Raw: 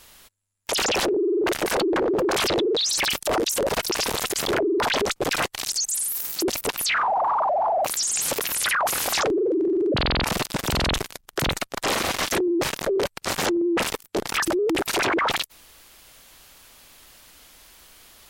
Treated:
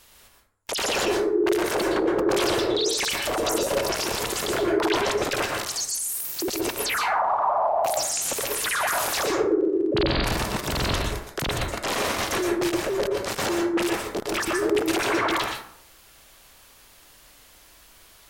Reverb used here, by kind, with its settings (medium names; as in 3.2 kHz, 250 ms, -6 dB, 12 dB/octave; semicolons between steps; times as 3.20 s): plate-style reverb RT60 0.66 s, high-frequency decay 0.45×, pre-delay 105 ms, DRR 0 dB; trim -4 dB